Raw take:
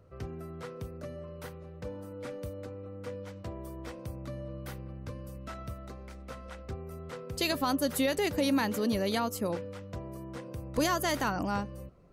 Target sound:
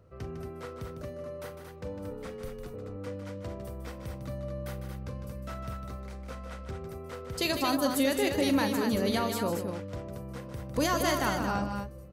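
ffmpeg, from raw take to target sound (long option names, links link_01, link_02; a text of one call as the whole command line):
ffmpeg -i in.wav -filter_complex "[0:a]asettb=1/sr,asplit=3[link_01][link_02][link_03];[link_01]atrim=end=2.104[link_04];[link_02]atrim=start=2.1:end=2.74,asetpts=PTS-STARTPTS,afade=type=in:duration=0.004:curve=qsin,afade=type=out:start_time=0.636:duration=0.004:curve=qsin,afreqshift=-64[link_05];[link_03]atrim=start=2.736[link_06];[link_04][link_05]acrossfade=duration=0.004:curve1=hsin:curve2=qsin[link_07];[link_07][link_06]acrossfade=duration=0.004:curve1=qsin:curve2=hsin,aecho=1:1:41|153|228:0.251|0.376|0.501" out.wav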